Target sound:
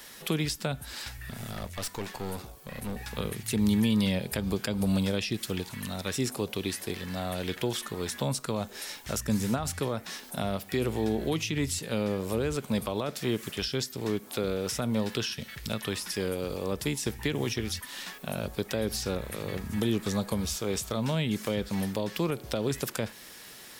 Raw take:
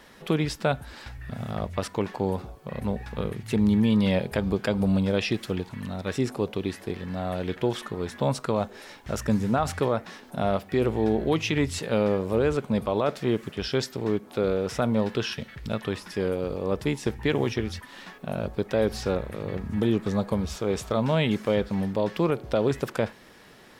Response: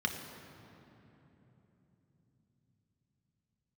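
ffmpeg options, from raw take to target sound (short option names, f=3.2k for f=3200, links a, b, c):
-filter_complex "[0:a]crystalizer=i=6:c=0,asettb=1/sr,asplit=3[a][b][c];[a]atrim=end=1.314[d];[b]atrim=start=1.31:end=2.97,asetpts=PTS-STARTPTS,afade=t=in:d=0.004:c=qsin,afade=t=out:st=1.656:d=0.004:c=qsin,aeval=exprs='(tanh(20*val(0)+0.5)-tanh(0.5))/20':c=same[e];[c]atrim=start=2.966[f];[d][e]acrossfade=d=0.004:c1=hsin:c2=qsin[g];[g][f]acrossfade=d=0.004:c1=qsin:c2=hsin,acrossover=split=340[h][i];[i]acompressor=threshold=-27dB:ratio=10[j];[h][j]amix=inputs=2:normalize=0,volume=-3.5dB"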